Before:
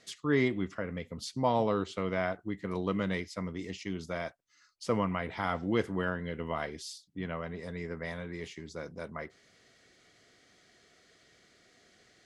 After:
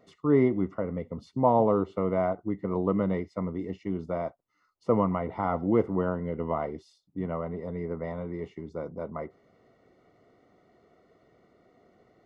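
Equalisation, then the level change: polynomial smoothing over 65 samples; low shelf 110 Hz -5 dB; +6.5 dB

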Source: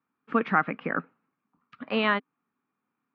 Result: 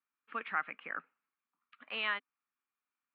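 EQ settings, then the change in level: band-pass 3200 Hz, Q 0.96; air absorption 440 m; high shelf 3100 Hz +11 dB; -2.5 dB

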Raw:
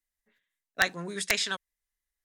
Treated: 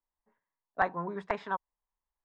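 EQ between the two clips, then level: synth low-pass 960 Hz, resonance Q 4.4; -1.5 dB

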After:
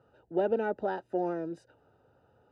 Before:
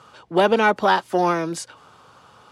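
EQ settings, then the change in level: running mean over 40 samples; bell 180 Hz -8 dB 1.1 oct; -5.5 dB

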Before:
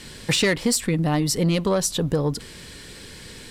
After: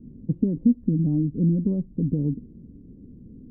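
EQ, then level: ladder low-pass 290 Hz, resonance 55%; +7.0 dB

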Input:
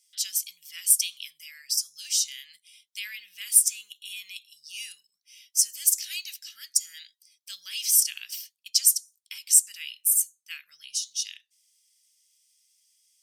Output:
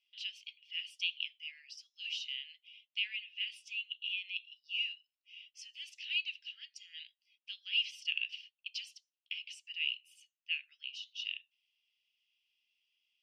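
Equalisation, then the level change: ladder band-pass 2900 Hz, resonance 80%; air absorption 330 m; +8.0 dB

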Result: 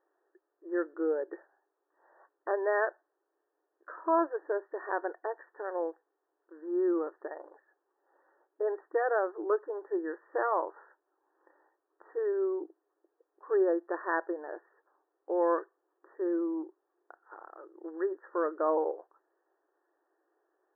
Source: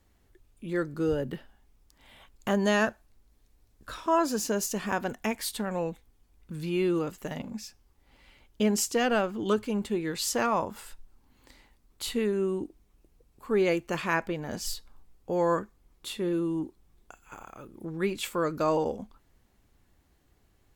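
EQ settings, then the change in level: brick-wall FIR band-pass 310–1900 Hz; air absorption 490 m; 0.0 dB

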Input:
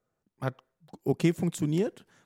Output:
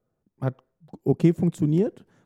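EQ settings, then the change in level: tilt shelf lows +7 dB, about 920 Hz; 0.0 dB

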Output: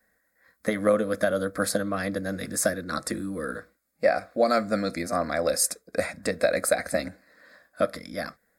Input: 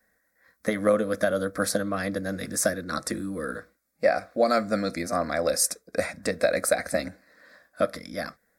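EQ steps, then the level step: notch 5800 Hz, Q 9.3; 0.0 dB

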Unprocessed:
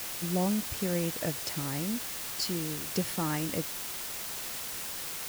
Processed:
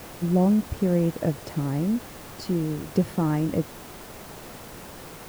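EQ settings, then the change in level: tilt shelf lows +10 dB, about 1400 Hz; 0.0 dB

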